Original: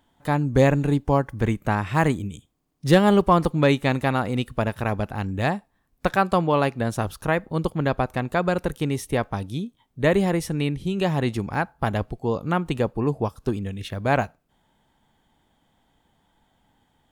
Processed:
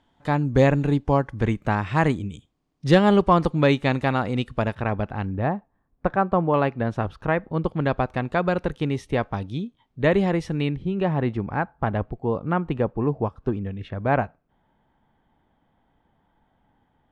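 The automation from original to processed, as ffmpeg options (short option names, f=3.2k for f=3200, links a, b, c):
-af "asetnsamples=n=441:p=0,asendcmd='4.75 lowpass f 2900;5.35 lowpass f 1300;6.54 lowpass f 2400;7.7 lowpass f 4000;10.76 lowpass f 1900',lowpass=5.5k"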